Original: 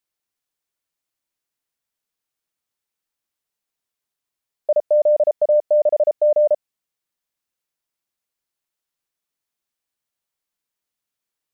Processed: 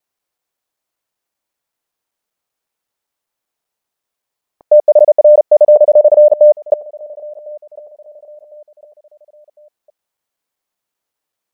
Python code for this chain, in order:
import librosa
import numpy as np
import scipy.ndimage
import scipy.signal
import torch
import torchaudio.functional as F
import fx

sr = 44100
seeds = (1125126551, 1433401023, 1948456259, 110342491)

p1 = fx.block_reorder(x, sr, ms=192.0, group=2)
p2 = fx.peak_eq(p1, sr, hz=700.0, db=7.0, octaves=2.0)
p3 = p2 + fx.echo_feedback(p2, sr, ms=1054, feedback_pct=40, wet_db=-23, dry=0)
y = p3 * librosa.db_to_amplitude(3.0)